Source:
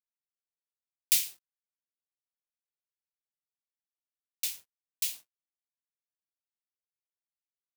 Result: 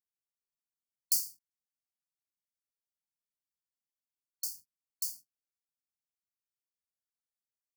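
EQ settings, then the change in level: brick-wall FIR band-stop 310–4300 Hz; -3.5 dB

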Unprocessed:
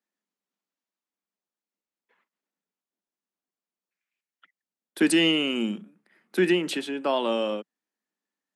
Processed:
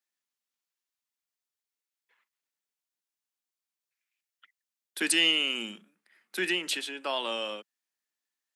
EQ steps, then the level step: high-pass 330 Hz 6 dB/octave; tilt shelf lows -7 dB, about 1.2 kHz; -3.5 dB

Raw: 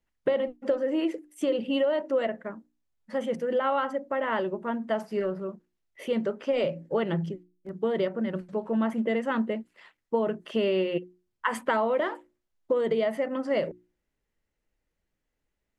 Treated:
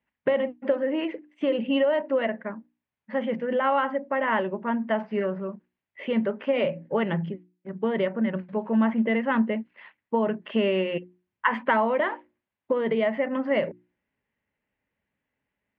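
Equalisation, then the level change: cabinet simulation 130–2700 Hz, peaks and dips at 160 Hz -5 dB, 340 Hz -10 dB, 480 Hz -6 dB, 700 Hz -5 dB, 1.3 kHz -6 dB; +7.0 dB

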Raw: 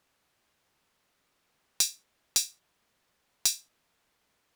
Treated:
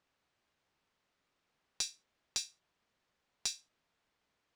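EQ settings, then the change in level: distance through air 120 m; treble shelf 8.2 kHz +11.5 dB; -6.0 dB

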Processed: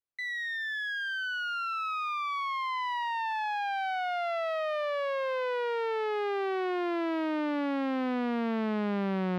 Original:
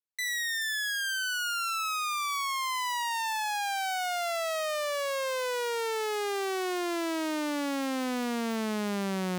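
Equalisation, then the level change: distance through air 390 m; +2.0 dB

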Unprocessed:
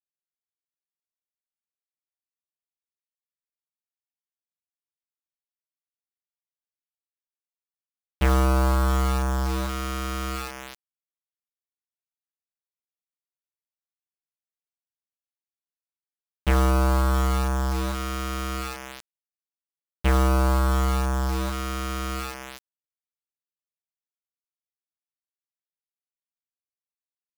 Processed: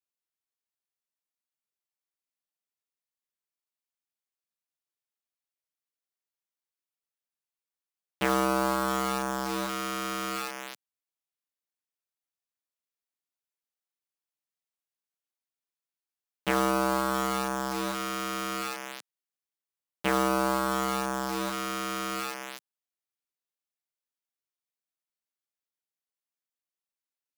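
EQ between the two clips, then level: Bessel high-pass 210 Hz, order 4; 0.0 dB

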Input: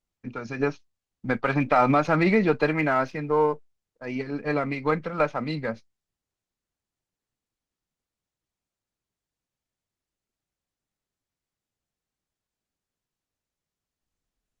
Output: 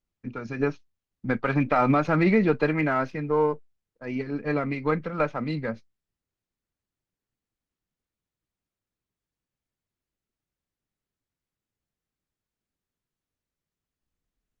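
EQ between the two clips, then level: peaking EQ 760 Hz -4.5 dB 1.3 oct; treble shelf 3 kHz -8.5 dB; +1.5 dB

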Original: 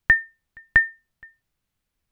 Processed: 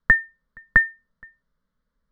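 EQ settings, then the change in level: distance through air 260 m; static phaser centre 510 Hz, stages 8; band-stop 770 Hz, Q 16; +7.5 dB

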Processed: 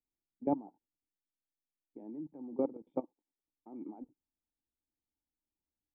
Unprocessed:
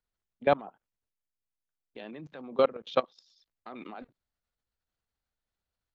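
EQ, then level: cascade formant filter u; +5.5 dB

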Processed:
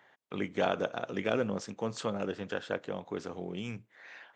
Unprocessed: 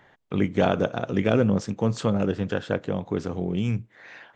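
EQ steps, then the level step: high-pass 180 Hz 6 dB/octave; bass shelf 340 Hz -8.5 dB; -4.5 dB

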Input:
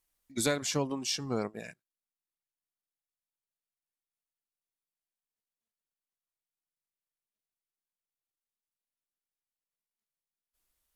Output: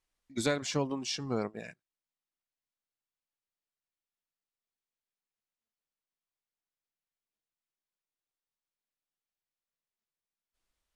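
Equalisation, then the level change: distance through air 66 m; 0.0 dB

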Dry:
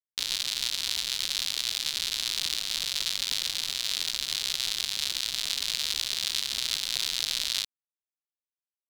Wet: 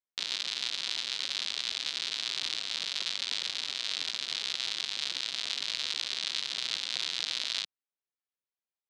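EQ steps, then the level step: high-pass 230 Hz 12 dB/octave; distance through air 85 m; treble shelf 11 kHz -10.5 dB; 0.0 dB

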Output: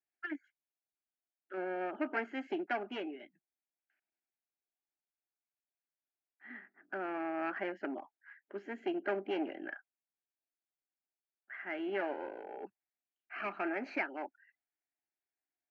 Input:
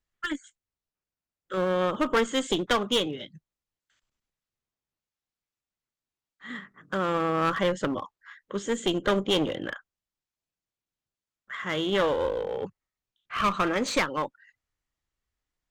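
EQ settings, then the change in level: distance through air 170 m; cabinet simulation 490–3600 Hz, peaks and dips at 560 Hz -6 dB, 910 Hz -6 dB, 1.3 kHz -9 dB, 1.9 kHz -8 dB, 3.2 kHz -8 dB; static phaser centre 730 Hz, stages 8; +1.0 dB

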